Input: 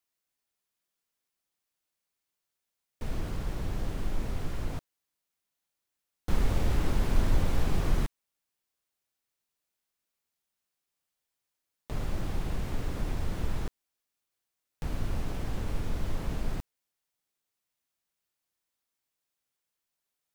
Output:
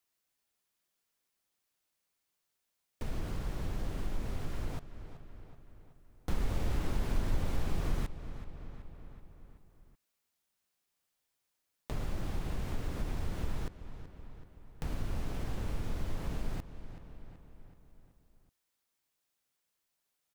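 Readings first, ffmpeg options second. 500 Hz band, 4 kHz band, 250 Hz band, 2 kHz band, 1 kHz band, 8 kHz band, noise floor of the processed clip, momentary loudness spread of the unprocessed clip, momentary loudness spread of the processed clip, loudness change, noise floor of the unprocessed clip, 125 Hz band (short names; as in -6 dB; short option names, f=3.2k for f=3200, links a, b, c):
-4.5 dB, -4.5 dB, -4.5 dB, -4.5 dB, -4.5 dB, -4.5 dB, -83 dBFS, 10 LU, 19 LU, -5.0 dB, under -85 dBFS, -4.5 dB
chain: -filter_complex "[0:a]asplit=2[a][b];[b]adelay=378,lowpass=f=4.4k:p=1,volume=-16.5dB,asplit=2[c][d];[d]adelay=378,lowpass=f=4.4k:p=1,volume=0.55,asplit=2[e][f];[f]adelay=378,lowpass=f=4.4k:p=1,volume=0.55,asplit=2[g][h];[h]adelay=378,lowpass=f=4.4k:p=1,volume=0.55,asplit=2[i][j];[j]adelay=378,lowpass=f=4.4k:p=1,volume=0.55[k];[c][e][g][i][k]amix=inputs=5:normalize=0[l];[a][l]amix=inputs=2:normalize=0,acompressor=threshold=-44dB:ratio=1.5,volume=2.5dB"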